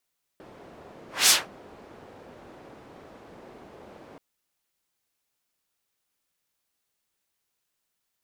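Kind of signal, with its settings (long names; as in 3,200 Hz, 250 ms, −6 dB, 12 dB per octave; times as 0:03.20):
pass-by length 3.78 s, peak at 0:00.89, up 0.21 s, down 0.21 s, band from 470 Hz, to 6,400 Hz, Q 0.88, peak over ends 32 dB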